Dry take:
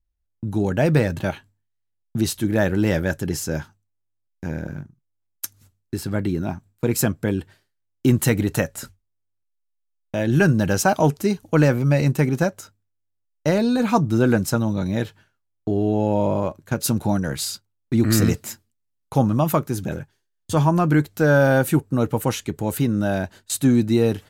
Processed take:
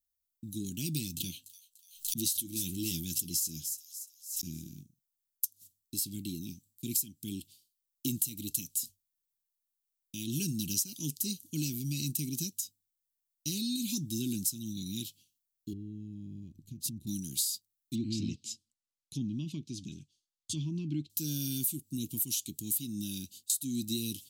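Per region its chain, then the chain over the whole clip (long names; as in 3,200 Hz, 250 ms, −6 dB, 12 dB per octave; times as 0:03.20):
0:01.13–0:04.69: double-tracking delay 12 ms −8 dB + delay with a high-pass on its return 293 ms, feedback 44%, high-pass 5,000 Hz, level −11.5 dB + background raised ahead of every attack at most 140 dB per second
0:15.73–0:17.07: spectral tilt −4.5 dB per octave + downward compressor 3 to 1, threshold −28 dBFS
0:17.95–0:21.10: treble cut that deepens with the level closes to 2,800 Hz, closed at −16 dBFS + high-frequency loss of the air 76 metres
whole clip: inverse Chebyshev band-stop filter 490–1,900 Hz, stop band 40 dB; RIAA equalisation recording; downward compressor 12 to 1, threshold −22 dBFS; level −6 dB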